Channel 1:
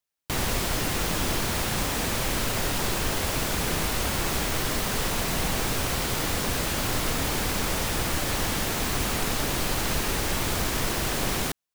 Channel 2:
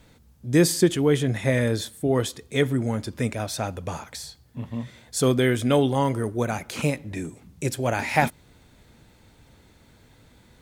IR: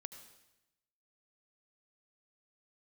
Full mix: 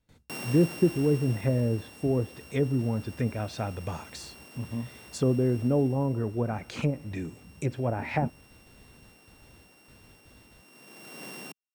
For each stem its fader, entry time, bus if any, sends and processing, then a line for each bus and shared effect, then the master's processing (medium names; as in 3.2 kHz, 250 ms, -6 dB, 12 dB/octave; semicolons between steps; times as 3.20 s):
5.58 s -6 dB -> 6.28 s -14 dB, 0.00 s, no send, sorted samples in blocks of 16 samples; high-pass 180 Hz 24 dB/octave; auto duck -16 dB, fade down 1.95 s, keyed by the second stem
-5.0 dB, 0.00 s, no send, gate with hold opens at -44 dBFS; low-pass that closes with the level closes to 620 Hz, closed at -18.5 dBFS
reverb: none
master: bass shelf 190 Hz +5 dB